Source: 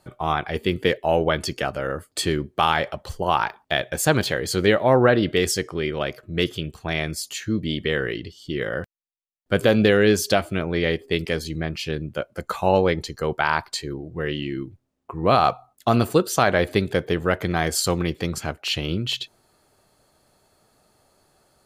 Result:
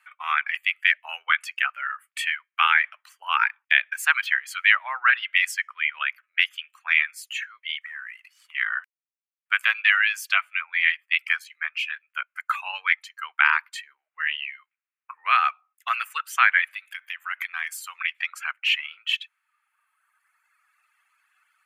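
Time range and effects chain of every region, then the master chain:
7.81–8.55 s: CVSD coder 64 kbps + peaking EQ 3.2 kHz -8 dB 0.39 oct + compression, threshold -33 dBFS
16.74–17.95 s: treble shelf 7 kHz +11 dB + compression 8:1, threshold -24 dBFS
whole clip: reverb removal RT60 1.8 s; steep high-pass 1.2 kHz 36 dB/octave; resonant high shelf 3.3 kHz -10.5 dB, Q 3; trim +4 dB

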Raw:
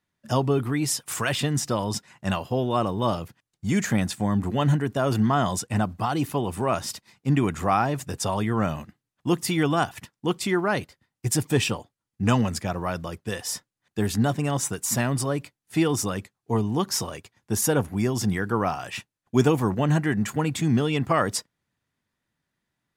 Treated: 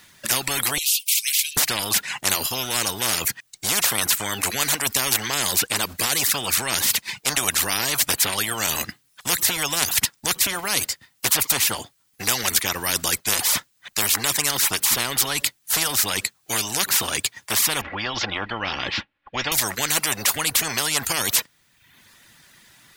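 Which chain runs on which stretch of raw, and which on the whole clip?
0.78–1.57 s: steep high-pass 2.9 kHz 72 dB/octave + frequency shift -290 Hz
17.81–19.52 s: inverse Chebyshev low-pass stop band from 8.5 kHz, stop band 60 dB + comb 3.6 ms, depth 52%
whole clip: reverb removal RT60 0.57 s; tilt shelf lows -7 dB, about 1.3 kHz; spectrum-flattening compressor 10:1; trim +4 dB

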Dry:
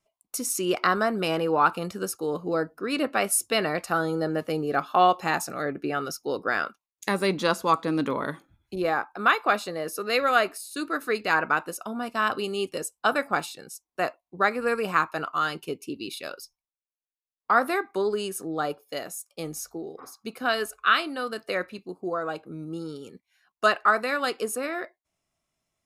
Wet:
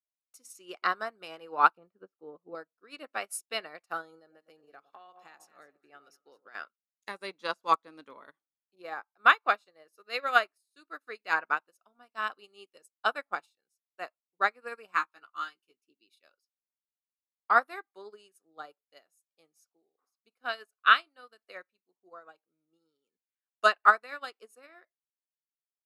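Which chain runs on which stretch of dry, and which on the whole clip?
1.77–2.55 s: low-pass 1.9 kHz + tilt shelf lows +6 dB, about 750 Hz
4.19–6.55 s: echo whose repeats swap between lows and highs 105 ms, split 880 Hz, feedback 54%, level -10.5 dB + compression 16:1, threshold -25 dBFS
14.93–15.82 s: high-pass 140 Hz + peaking EQ 600 Hz -10.5 dB 1 oct + doubling 16 ms -5.5 dB
whole clip: frequency weighting A; upward expansion 2.5:1, over -42 dBFS; trim +2 dB

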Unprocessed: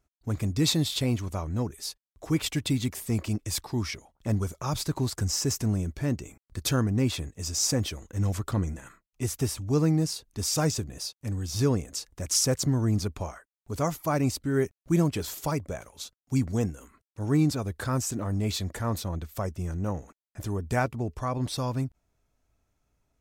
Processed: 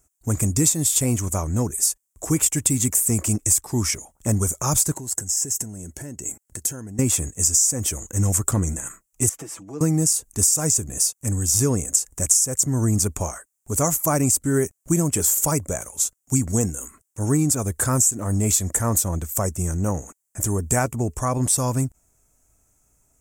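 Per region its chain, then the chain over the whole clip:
4.92–6.99 s: compression, threshold -38 dBFS + comb of notches 1.2 kHz
9.29–9.81 s: three-band isolator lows -20 dB, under 210 Hz, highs -20 dB, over 3.9 kHz + compression 2:1, threshold -49 dBFS + comb 6.1 ms, depth 63%
whole clip: resonant high shelf 5.6 kHz +11.5 dB, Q 3; compression 16:1, threshold -22 dBFS; trim +7 dB

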